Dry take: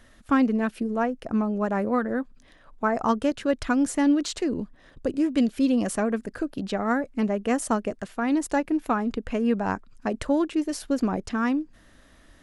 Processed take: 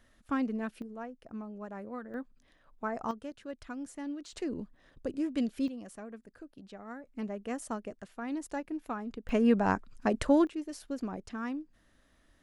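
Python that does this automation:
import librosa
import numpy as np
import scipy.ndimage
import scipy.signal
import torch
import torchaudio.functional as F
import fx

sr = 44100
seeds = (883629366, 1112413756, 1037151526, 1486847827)

y = fx.gain(x, sr, db=fx.steps((0.0, -10.5), (0.82, -17.0), (2.14, -11.0), (3.11, -18.0), (4.33, -9.0), (5.68, -20.0), (7.07, -12.5), (9.29, -1.0), (10.47, -12.0)))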